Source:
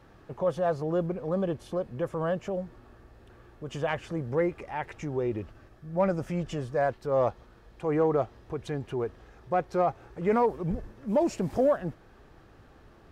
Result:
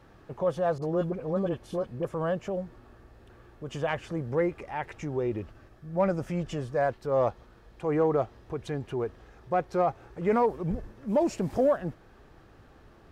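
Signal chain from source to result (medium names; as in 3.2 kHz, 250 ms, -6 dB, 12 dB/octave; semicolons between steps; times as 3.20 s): 0.78–2.05 s: phase dispersion highs, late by 41 ms, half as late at 930 Hz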